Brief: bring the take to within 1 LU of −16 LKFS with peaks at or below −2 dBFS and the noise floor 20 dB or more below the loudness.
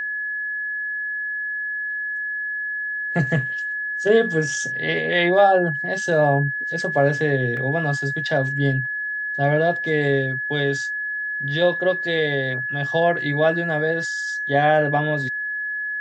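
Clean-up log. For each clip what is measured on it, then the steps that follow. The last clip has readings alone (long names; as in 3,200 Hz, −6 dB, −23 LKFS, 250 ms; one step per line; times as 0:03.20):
number of dropouts 1; longest dropout 1.4 ms; interfering tone 1,700 Hz; level of the tone −24 dBFS; integrated loudness −21.5 LKFS; sample peak −5.0 dBFS; target loudness −16.0 LKFS
→ repair the gap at 0:07.57, 1.4 ms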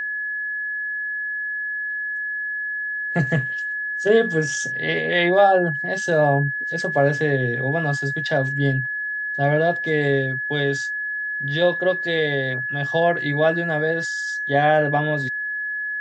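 number of dropouts 0; interfering tone 1,700 Hz; level of the tone −24 dBFS
→ notch filter 1,700 Hz, Q 30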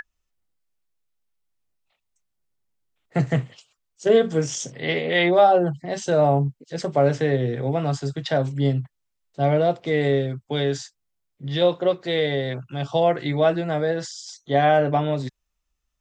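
interfering tone none found; integrated loudness −22.5 LKFS; sample peak −5.5 dBFS; target loudness −16.0 LKFS
→ level +6.5 dB
brickwall limiter −2 dBFS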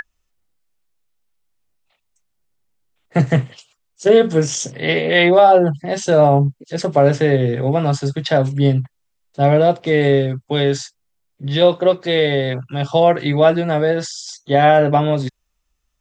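integrated loudness −16.0 LKFS; sample peak −2.0 dBFS; background noise floor −71 dBFS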